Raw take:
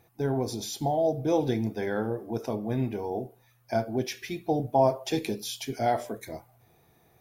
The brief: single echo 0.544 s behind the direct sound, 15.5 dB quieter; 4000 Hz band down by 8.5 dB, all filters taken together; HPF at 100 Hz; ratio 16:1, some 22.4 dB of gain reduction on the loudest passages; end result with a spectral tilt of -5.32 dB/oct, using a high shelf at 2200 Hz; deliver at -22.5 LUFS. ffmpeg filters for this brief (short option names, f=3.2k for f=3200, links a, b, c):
-af "highpass=100,highshelf=f=2.2k:g=-6,equalizer=f=4k:t=o:g=-5,acompressor=threshold=-40dB:ratio=16,aecho=1:1:544:0.168,volume=23dB"